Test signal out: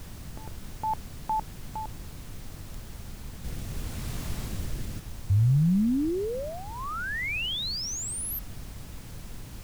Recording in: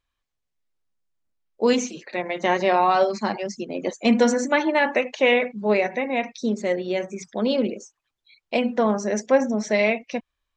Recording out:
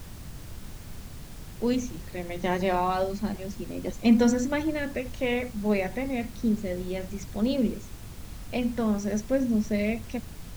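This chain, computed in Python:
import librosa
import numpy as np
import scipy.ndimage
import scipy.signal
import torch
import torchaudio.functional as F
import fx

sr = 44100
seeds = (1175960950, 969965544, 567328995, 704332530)

y = fx.rotary(x, sr, hz=0.65)
y = fx.dmg_noise_colour(y, sr, seeds[0], colour='pink', level_db=-42.0)
y = fx.bass_treble(y, sr, bass_db=14, treble_db=3)
y = y * 10.0 ** (-7.5 / 20.0)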